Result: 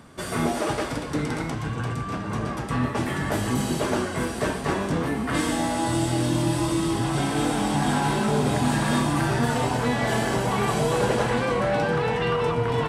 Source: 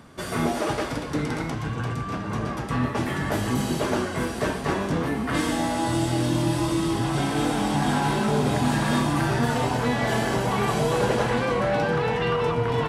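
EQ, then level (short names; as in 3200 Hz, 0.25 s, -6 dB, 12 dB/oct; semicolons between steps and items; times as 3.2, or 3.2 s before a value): bell 8400 Hz +5 dB 0.28 oct; 0.0 dB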